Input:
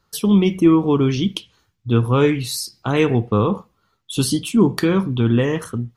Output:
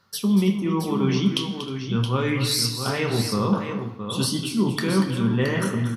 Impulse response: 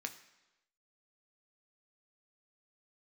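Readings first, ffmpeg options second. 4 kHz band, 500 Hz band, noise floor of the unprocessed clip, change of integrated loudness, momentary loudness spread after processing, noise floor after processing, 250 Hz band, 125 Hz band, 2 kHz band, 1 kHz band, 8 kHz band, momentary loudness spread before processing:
+1.5 dB, -7.0 dB, -67 dBFS, -5.0 dB, 6 LU, -34 dBFS, -5.0 dB, -4.0 dB, -1.0 dB, -3.5 dB, -0.5 dB, 10 LU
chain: -filter_complex "[0:a]areverse,acompressor=threshold=0.0562:ratio=6,areverse,aecho=1:1:237|313|671:0.299|0.106|0.398[s0];[1:a]atrim=start_sample=2205,asetrate=36603,aresample=44100[s1];[s0][s1]afir=irnorm=-1:irlink=0,volume=2.11"

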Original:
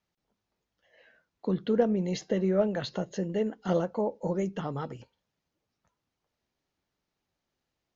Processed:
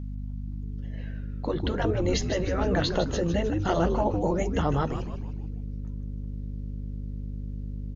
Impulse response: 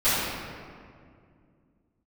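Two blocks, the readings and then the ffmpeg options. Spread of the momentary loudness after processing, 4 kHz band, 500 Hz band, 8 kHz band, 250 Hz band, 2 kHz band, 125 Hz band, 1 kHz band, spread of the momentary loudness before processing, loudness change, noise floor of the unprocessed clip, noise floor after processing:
12 LU, +8.5 dB, +1.5 dB, no reading, +2.0 dB, +8.5 dB, +7.5 dB, +7.5 dB, 10 LU, +0.5 dB, -85 dBFS, -35 dBFS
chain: -filter_complex "[0:a]aeval=exprs='val(0)+0.00891*(sin(2*PI*50*n/s)+sin(2*PI*2*50*n/s)/2+sin(2*PI*3*50*n/s)/3+sin(2*PI*4*50*n/s)/4+sin(2*PI*5*50*n/s)/5)':c=same,asplit=6[s0][s1][s2][s3][s4][s5];[s1]adelay=154,afreqshift=-120,volume=0.335[s6];[s2]adelay=308,afreqshift=-240,volume=0.164[s7];[s3]adelay=462,afreqshift=-360,volume=0.0804[s8];[s4]adelay=616,afreqshift=-480,volume=0.0394[s9];[s5]adelay=770,afreqshift=-600,volume=0.0193[s10];[s0][s6][s7][s8][s9][s10]amix=inputs=6:normalize=0,afftfilt=real='re*lt(hypot(re,im),0.282)':imag='im*lt(hypot(re,im),0.282)':win_size=1024:overlap=0.75,volume=2.51"

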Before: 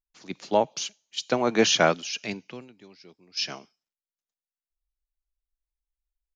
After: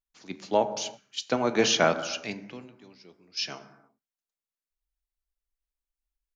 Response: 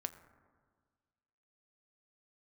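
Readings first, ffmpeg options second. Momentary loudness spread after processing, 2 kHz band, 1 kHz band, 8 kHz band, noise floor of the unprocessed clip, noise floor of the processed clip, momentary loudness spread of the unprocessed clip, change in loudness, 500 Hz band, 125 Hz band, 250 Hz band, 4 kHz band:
21 LU, -2.0 dB, -1.5 dB, -2.0 dB, under -85 dBFS, under -85 dBFS, 21 LU, -2.0 dB, -1.5 dB, -2.0 dB, -2.0 dB, -2.0 dB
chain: -filter_complex "[1:a]atrim=start_sample=2205,afade=t=out:st=0.39:d=0.01,atrim=end_sample=17640[s0];[0:a][s0]afir=irnorm=-1:irlink=0"

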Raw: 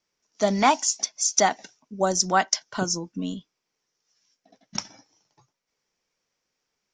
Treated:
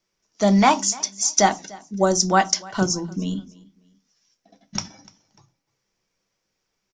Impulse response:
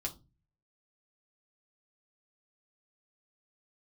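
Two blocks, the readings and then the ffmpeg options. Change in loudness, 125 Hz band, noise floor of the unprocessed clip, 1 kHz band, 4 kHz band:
+3.5 dB, +8.5 dB, -81 dBFS, +3.0 dB, +2.5 dB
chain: -filter_complex "[0:a]aecho=1:1:296|592:0.075|0.024,asplit=2[s0][s1];[1:a]atrim=start_sample=2205,afade=t=out:st=0.2:d=0.01,atrim=end_sample=9261,lowshelf=f=390:g=7.5[s2];[s1][s2]afir=irnorm=-1:irlink=0,volume=0.708[s3];[s0][s3]amix=inputs=2:normalize=0,volume=0.794"

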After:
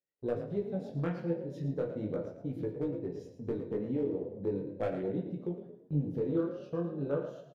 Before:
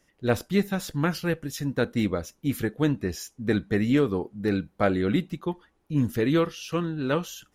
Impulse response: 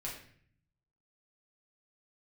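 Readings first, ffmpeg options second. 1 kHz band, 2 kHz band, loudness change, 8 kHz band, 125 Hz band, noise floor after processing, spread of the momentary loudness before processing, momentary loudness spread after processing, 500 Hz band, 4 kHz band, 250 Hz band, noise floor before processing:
-14.0 dB, -20.0 dB, -9.0 dB, under -30 dB, -8.5 dB, -57 dBFS, 7 LU, 6 LU, -6.5 dB, under -20 dB, -10.0 dB, -69 dBFS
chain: -filter_complex "[0:a]highpass=99,afwtdn=0.0355,aemphasis=mode=reproduction:type=75kf,agate=range=0.224:threshold=0.00316:ratio=16:detection=peak,equalizer=f=250:t=o:w=1:g=-3,equalizer=f=500:t=o:w=1:g=8,equalizer=f=1000:t=o:w=1:g=-3,equalizer=f=4000:t=o:w=1:g=6,acompressor=threshold=0.0224:ratio=2.5,asoftclip=type=hard:threshold=0.075,flanger=delay=16:depth=7.9:speed=0.38,asplit=5[s0][s1][s2][s3][s4];[s1]adelay=112,afreqshift=36,volume=0.299[s5];[s2]adelay=224,afreqshift=72,volume=0.105[s6];[s3]adelay=336,afreqshift=108,volume=0.0367[s7];[s4]adelay=448,afreqshift=144,volume=0.0127[s8];[s0][s5][s6][s7][s8]amix=inputs=5:normalize=0,asplit=2[s9][s10];[1:a]atrim=start_sample=2205[s11];[s10][s11]afir=irnorm=-1:irlink=0,volume=0.891[s12];[s9][s12]amix=inputs=2:normalize=0,volume=0.668"

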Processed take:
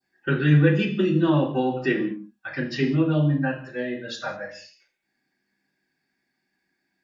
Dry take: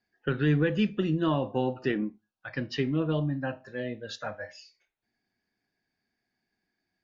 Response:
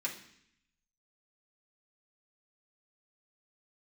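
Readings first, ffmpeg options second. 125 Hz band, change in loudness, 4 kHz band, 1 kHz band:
+8.0 dB, +6.5 dB, +4.0 dB, +5.0 dB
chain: -filter_complex "[0:a]adynamicequalizer=threshold=0.00501:dfrequency=2000:dqfactor=1.3:tfrequency=2000:tqfactor=1.3:attack=5:release=100:ratio=0.375:range=2:mode=cutabove:tftype=bell[s0];[1:a]atrim=start_sample=2205,afade=t=out:st=0.26:d=0.01,atrim=end_sample=11907[s1];[s0][s1]afir=irnorm=-1:irlink=0,volume=1.68"

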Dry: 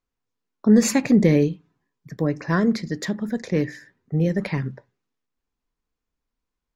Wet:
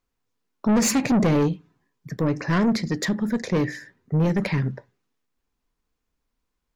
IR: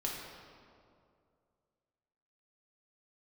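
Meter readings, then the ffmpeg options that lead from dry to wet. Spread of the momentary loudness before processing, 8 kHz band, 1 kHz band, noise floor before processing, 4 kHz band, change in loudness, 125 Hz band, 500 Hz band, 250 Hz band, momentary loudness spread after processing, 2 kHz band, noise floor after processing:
12 LU, +1.5 dB, +3.5 dB, -84 dBFS, +2.5 dB, -1.5 dB, 0.0 dB, -2.5 dB, -2.0 dB, 10 LU, +0.5 dB, -79 dBFS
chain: -af "asoftclip=type=tanh:threshold=0.0944,volume=1.68"

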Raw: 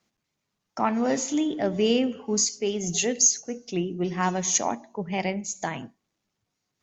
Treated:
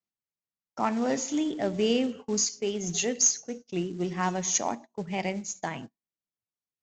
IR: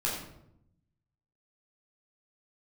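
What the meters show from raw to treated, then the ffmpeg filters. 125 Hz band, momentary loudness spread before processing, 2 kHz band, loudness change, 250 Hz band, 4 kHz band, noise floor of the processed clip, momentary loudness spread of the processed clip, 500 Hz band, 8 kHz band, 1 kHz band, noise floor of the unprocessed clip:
-3.0 dB, 11 LU, -3.0 dB, -3.0 dB, -3.0 dB, -3.0 dB, under -85 dBFS, 11 LU, -3.0 dB, no reading, -3.0 dB, -81 dBFS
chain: -af "agate=range=0.1:threshold=0.0126:ratio=16:detection=peak,aresample=16000,acrusher=bits=6:mode=log:mix=0:aa=0.000001,aresample=44100,volume=0.708"

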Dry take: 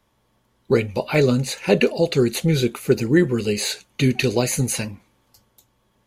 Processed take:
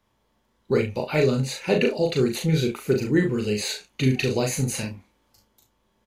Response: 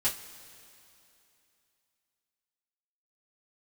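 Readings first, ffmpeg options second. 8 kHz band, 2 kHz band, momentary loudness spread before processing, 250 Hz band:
-5.0 dB, -3.5 dB, 5 LU, -3.5 dB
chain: -af "equalizer=f=11000:t=o:w=0.75:g=-4,aecho=1:1:38|69:0.668|0.2,volume=0.562"

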